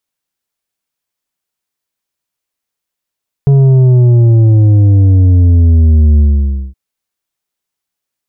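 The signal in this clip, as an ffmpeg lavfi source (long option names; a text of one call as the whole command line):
ffmpeg -f lavfi -i "aevalsrc='0.596*clip((3.27-t)/0.55,0,1)*tanh(2.24*sin(2*PI*140*3.27/log(65/140)*(exp(log(65/140)*t/3.27)-1)))/tanh(2.24)':duration=3.27:sample_rate=44100" out.wav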